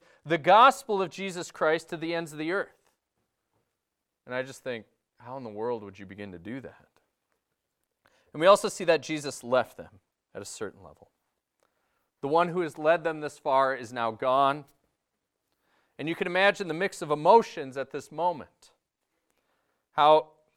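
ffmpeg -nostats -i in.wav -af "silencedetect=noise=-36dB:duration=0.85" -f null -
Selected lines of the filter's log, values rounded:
silence_start: 2.64
silence_end: 4.29 | silence_duration: 1.65
silence_start: 6.69
silence_end: 8.35 | silence_duration: 1.66
silence_start: 10.87
silence_end: 12.23 | silence_duration: 1.36
silence_start: 14.61
silence_end: 15.99 | silence_duration: 1.39
silence_start: 18.43
silence_end: 19.98 | silence_duration: 1.55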